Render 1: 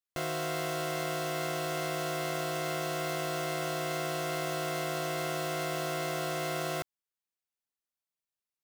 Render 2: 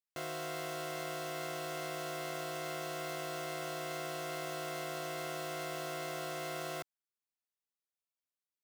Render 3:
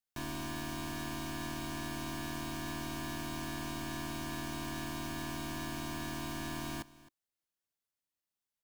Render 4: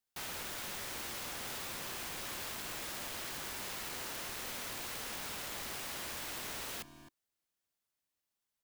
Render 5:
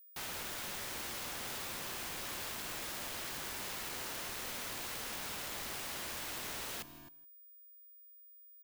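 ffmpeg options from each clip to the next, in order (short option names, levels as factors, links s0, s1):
-af "highpass=f=180:p=1,volume=0.501"
-af "bandreject=f=2700:w=22,afreqshift=-380,aecho=1:1:263:0.106,volume=1.12"
-af "aeval=exprs='(mod(106*val(0)+1,2)-1)/106':c=same,volume=1.41"
-af "aeval=exprs='val(0)+0.00158*sin(2*PI*15000*n/s)':c=same,aecho=1:1:162:0.0944"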